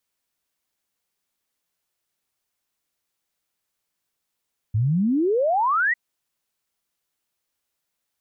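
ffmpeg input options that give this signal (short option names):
-f lavfi -i "aevalsrc='0.133*clip(min(t,1.2-t)/0.01,0,1)*sin(2*PI*100*1.2/log(2000/100)*(exp(log(2000/100)*t/1.2)-1))':d=1.2:s=44100"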